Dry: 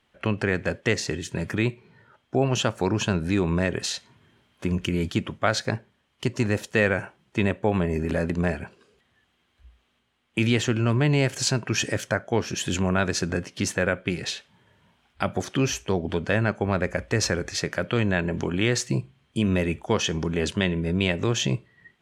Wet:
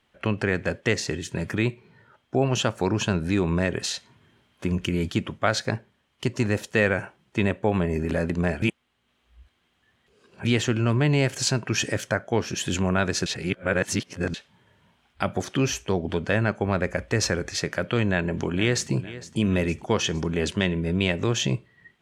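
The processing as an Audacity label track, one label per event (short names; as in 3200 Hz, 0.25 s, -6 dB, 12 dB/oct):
8.620000	10.450000	reverse
13.260000	14.340000	reverse
18.070000	18.920000	echo throw 0.46 s, feedback 55%, level -16 dB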